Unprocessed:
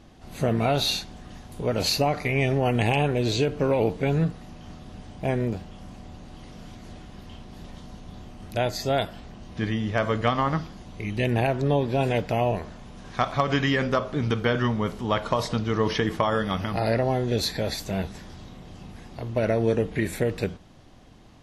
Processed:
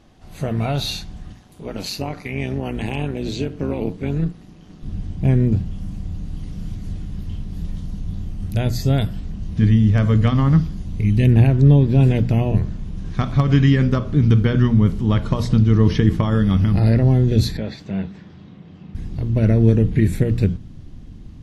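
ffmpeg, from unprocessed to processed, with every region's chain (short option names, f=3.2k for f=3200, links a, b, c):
-filter_complex "[0:a]asettb=1/sr,asplit=3[a][b][c];[a]atrim=end=1.324[d];[b]atrim=start=1.32:end=4.83,asetpts=PTS-STARTPTS,afade=t=in:d=0.004:c=qsin,afade=t=out:st=3.506:d=0.004:c=qsin,highpass=240,tremolo=f=190:d=0.621[e];[c]atrim=start=4.826[f];[d][e]acrossfade=d=0.004:c1=hsin:c2=qsin[g];[g][f]acrossfade=d=0.004:c1=qsin:c2=hsin,asettb=1/sr,asplit=3[h][i][j];[h]atrim=end=5.654[k];[i]atrim=start=5.65:end=11.27,asetpts=PTS-STARTPTS,afade=t=in:d=0.004:c=qsin,afade=t=out:st=5.616:d=0.004:c=qsin,highshelf=f=9.6k:g=10,bandreject=f=340:w=8.6[l];[j]atrim=start=11.266[m];[k][l]acrossfade=d=0.004:c1=hsin:c2=qsin[n];[n][m]acrossfade=d=0.004:c1=qsin:c2=hsin,asettb=1/sr,asplit=3[o][p][q];[o]atrim=end=17.574[r];[p]atrim=start=17.57:end=18.95,asetpts=PTS-STARTPTS,afade=t=in:d=0.004:c=qsin,afade=t=out:st=1.376:d=0.004:c=qsin,highpass=240,lowpass=3k,equalizer=f=330:t=o:w=0.86:g=-4.5[s];[q]atrim=start=18.946[t];[r][s]acrossfade=d=0.004:c1=hsin:c2=qsin[u];[u][t]acrossfade=d=0.004:c1=qsin:c2=hsin,bandreject=f=60:t=h:w=6,bandreject=f=120:t=h:w=6,bandreject=f=180:t=h:w=6,bandreject=f=240:t=h:w=6,asubboost=boost=9.5:cutoff=220,volume=-1dB"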